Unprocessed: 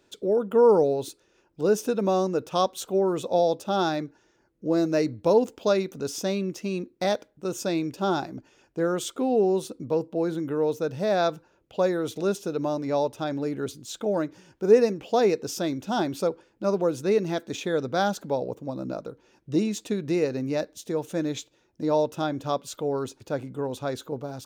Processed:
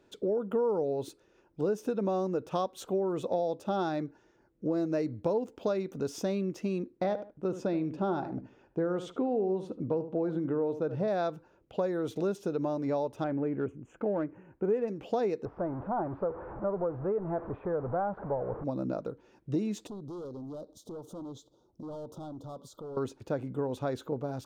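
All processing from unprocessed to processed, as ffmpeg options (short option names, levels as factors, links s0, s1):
-filter_complex "[0:a]asettb=1/sr,asplit=3[s0][s1][s2];[s0]atrim=end=6.974[s3];[s1]atrim=start=6.97:end=11.08,asetpts=PTS-STARTPTS,afade=t=in:d=0.004:c=qsin,afade=t=out:st=4.106:d=0.004:c=qsin,aemphasis=mode=reproduction:type=75fm,asplit=2[s4][s5];[s5]adelay=75,lowpass=f=1800:p=1,volume=0.237,asplit=2[s6][s7];[s7]adelay=75,lowpass=f=1800:p=1,volume=0.2[s8];[s4][s6][s8]amix=inputs=3:normalize=0,atrim=end_sample=181251[s9];[s2]atrim=start=11.076[s10];[s3][s9]acrossfade=d=0.004:c1=hsin:c2=qsin[s11];[s11][s10]acrossfade=d=0.004:c1=qsin:c2=hsin,asettb=1/sr,asplit=3[s12][s13][s14];[s12]atrim=end=13.244[s15];[s13]atrim=start=13.24:end=14.88,asetpts=PTS-STARTPTS,afade=t=in:d=0.004:c=qsin,afade=t=out:st=1.636:d=0.004:c=qsin,asuperstop=centerf=4300:order=8:qfactor=1.1,equalizer=f=3600:w=1.1:g=4.5,adynamicsmooth=sensitivity=3:basefreq=2200[s16];[s14]atrim=start=14.876[s17];[s15][s16]acrossfade=d=0.004:c1=hsin:c2=qsin[s18];[s18][s17]acrossfade=d=0.004:c1=qsin:c2=hsin,asettb=1/sr,asplit=3[s19][s20][s21];[s19]atrim=end=15.454[s22];[s20]atrim=start=15.45:end=18.64,asetpts=PTS-STARTPTS,afade=t=in:d=0.004:c=qsin,afade=t=out:st=3.186:d=0.004:c=qsin,aeval=exprs='val(0)+0.5*0.0299*sgn(val(0))':c=same,lowpass=f=1200:w=0.5412,lowpass=f=1200:w=1.3066,equalizer=f=260:t=o:w=1.4:g=-11.5[s23];[s21]atrim=start=18.636[s24];[s22][s23]acrossfade=d=0.004:c1=hsin:c2=qsin[s25];[s25][s24]acrossfade=d=0.004:c1=qsin:c2=hsin,asettb=1/sr,asplit=3[s26][s27][s28];[s26]atrim=end=19.874[s29];[s27]atrim=start=19.87:end=22.97,asetpts=PTS-STARTPTS,afade=t=in:d=0.004:c=qsin,afade=t=out:st=3.096:d=0.004:c=qsin,volume=23.7,asoftclip=hard,volume=0.0422,acompressor=threshold=0.00794:ratio=5:attack=3.2:release=140:knee=1:detection=peak,asuperstop=centerf=2100:order=8:qfactor=1[s30];[s28]atrim=start=22.966[s31];[s29][s30]acrossfade=d=0.004:c1=hsin:c2=qsin[s32];[s32][s31]acrossfade=d=0.004:c1=qsin:c2=hsin,highshelf=f=2400:g=-11,acompressor=threshold=0.0355:ratio=4,volume=1.12"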